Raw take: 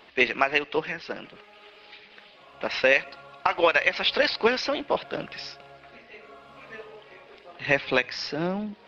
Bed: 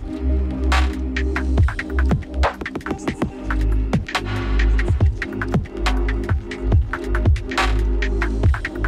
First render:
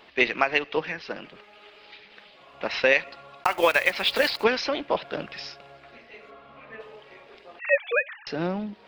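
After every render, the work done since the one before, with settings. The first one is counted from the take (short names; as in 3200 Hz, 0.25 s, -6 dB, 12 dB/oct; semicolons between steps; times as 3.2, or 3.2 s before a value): 3.44–4.46 block floating point 5-bit; 6.3–6.79 LPF 3800 Hz -> 2400 Hz; 7.59–8.27 sine-wave speech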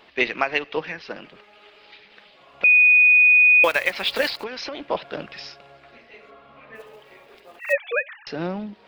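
2.64–3.64 bleep 2480 Hz -10.5 dBFS; 4.34–4.89 compressor 10:1, threshold -27 dBFS; 6.75–7.73 block floating point 5-bit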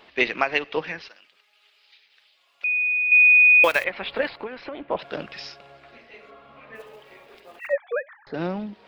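1.08–3.12 differentiator; 3.84–4.99 air absorption 450 m; 7.67–8.34 running mean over 16 samples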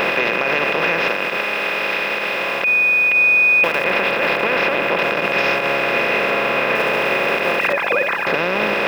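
per-bin compression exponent 0.2; limiter -7.5 dBFS, peak gain reduction 9.5 dB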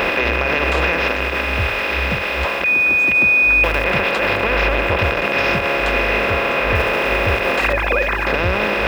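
add bed -6.5 dB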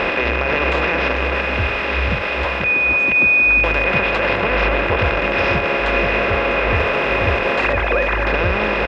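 air absorption 110 m; outdoor echo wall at 83 m, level -6 dB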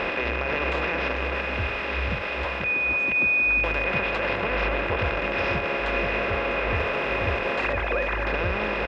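gain -8 dB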